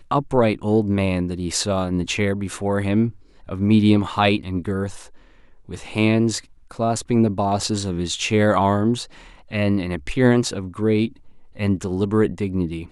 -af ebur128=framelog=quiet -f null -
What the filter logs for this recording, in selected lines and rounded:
Integrated loudness:
  I:         -21.0 LUFS
  Threshold: -31.5 LUFS
Loudness range:
  LRA:         2.2 LU
  Threshold: -41.5 LUFS
  LRA low:   -22.9 LUFS
  LRA high:  -20.6 LUFS